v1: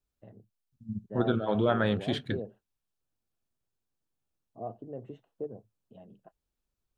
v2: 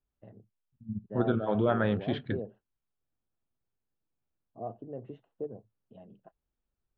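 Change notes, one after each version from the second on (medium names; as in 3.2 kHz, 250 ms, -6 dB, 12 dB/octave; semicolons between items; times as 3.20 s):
second voice: add distance through air 210 m; master: add low-pass 3.7 kHz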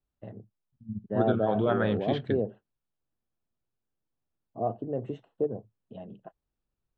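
first voice +9.0 dB; master: remove low-pass 3.7 kHz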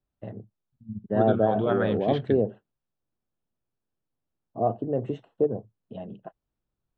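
first voice +5.0 dB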